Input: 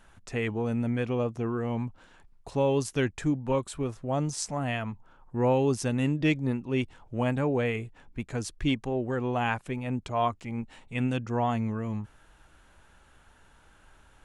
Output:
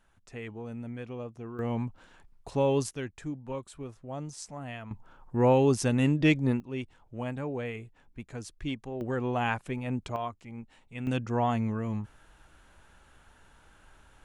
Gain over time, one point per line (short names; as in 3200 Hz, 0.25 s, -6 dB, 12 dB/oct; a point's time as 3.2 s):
-10.5 dB
from 1.59 s -0.5 dB
from 2.91 s -9.5 dB
from 4.91 s +2 dB
from 6.6 s -7.5 dB
from 9.01 s -1 dB
from 10.16 s -8.5 dB
from 11.07 s 0 dB